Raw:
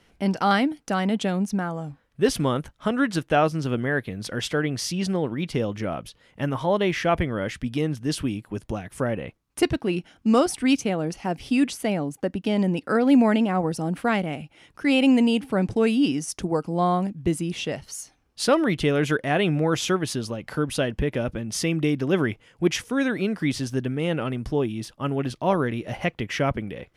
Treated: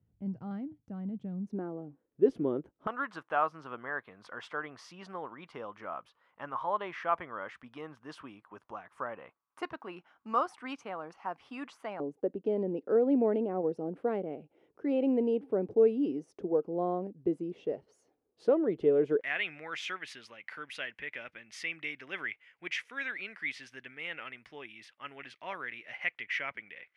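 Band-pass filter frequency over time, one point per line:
band-pass filter, Q 3.3
110 Hz
from 1.47 s 360 Hz
from 2.87 s 1.1 kHz
from 12.00 s 430 Hz
from 19.21 s 2.1 kHz

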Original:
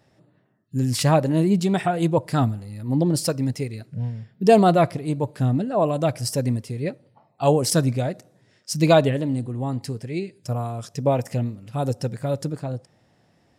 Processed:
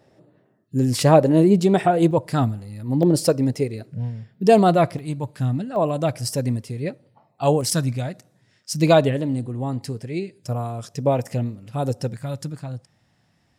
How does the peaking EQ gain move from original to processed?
peaking EQ 450 Hz 1.6 oct
+8 dB
from 2.11 s +0.5 dB
from 3.03 s +8 dB
from 3.92 s +0.5 dB
from 4.99 s -7.5 dB
from 5.76 s -0.5 dB
from 7.61 s -7 dB
from 8.74 s +1 dB
from 12.14 s -9.5 dB

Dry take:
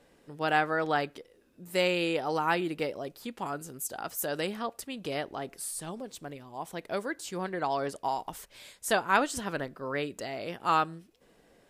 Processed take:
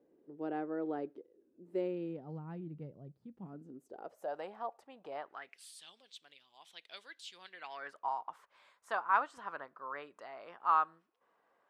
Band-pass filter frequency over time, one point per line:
band-pass filter, Q 3.1
1.77 s 350 Hz
2.40 s 140 Hz
3.31 s 140 Hz
4.35 s 810 Hz
5.13 s 810 Hz
5.67 s 3.4 kHz
7.49 s 3.4 kHz
8.05 s 1.1 kHz

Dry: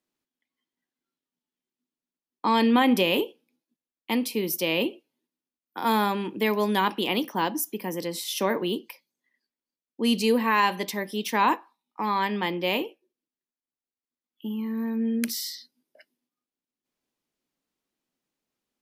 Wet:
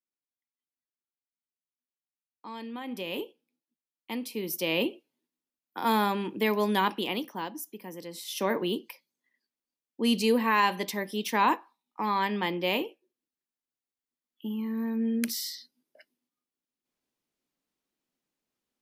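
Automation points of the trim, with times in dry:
2.81 s -19 dB
3.21 s -9 dB
4.19 s -9 dB
4.77 s -2 dB
6.85 s -2 dB
7.51 s -10.5 dB
8.06 s -10.5 dB
8.52 s -2 dB

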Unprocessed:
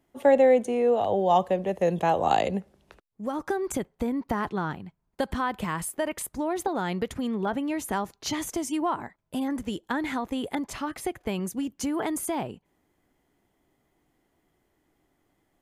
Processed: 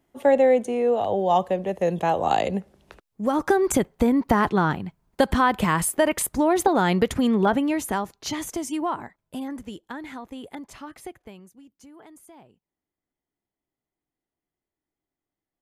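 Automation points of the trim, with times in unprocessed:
2.36 s +1 dB
3.39 s +8.5 dB
7.44 s +8.5 dB
8.14 s +0.5 dB
8.96 s +0.5 dB
10.00 s -7.5 dB
11.10 s -7.5 dB
11.51 s -19.5 dB

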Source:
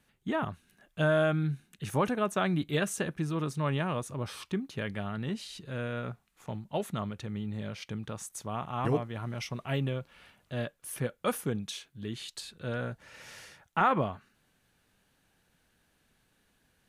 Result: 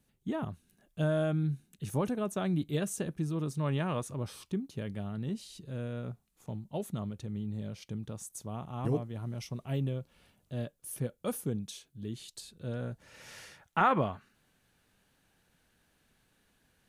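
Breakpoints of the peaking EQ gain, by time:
peaking EQ 1.7 kHz 2.6 oct
3.42 s -11 dB
4.00 s -1 dB
4.41 s -12.5 dB
12.73 s -12.5 dB
13.39 s -0.5 dB

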